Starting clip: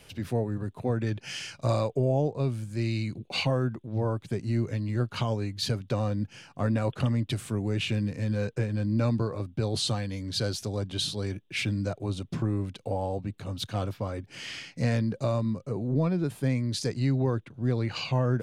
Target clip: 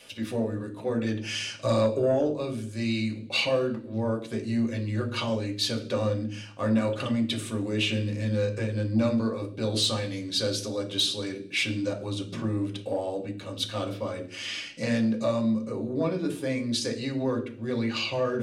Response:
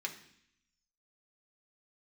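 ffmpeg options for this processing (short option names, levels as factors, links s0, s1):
-filter_complex "[0:a]asettb=1/sr,asplit=3[s0][s1][s2];[s0]atrim=end=1.134[s3];[s1]atrim=start=1.13:end=2.11,asetpts=PTS-STARTPTS,afade=t=in:d=0.004:c=qsin,afade=t=out:st=0.976:d=0.004:c=qsin,lowshelf=f=410:g=4.5[s4];[s2]atrim=start=2.106[s5];[s3][s4]acrossfade=d=0.004:c1=hsin:c2=qsin[s6];[s6][s5]acrossfade=d=0.004:c1=qsin:c2=hsin[s7];[1:a]atrim=start_sample=2205,asetrate=66150,aresample=44100[s8];[s7][s8]afir=irnorm=-1:irlink=0,asoftclip=type=tanh:threshold=0.0944,volume=2.24"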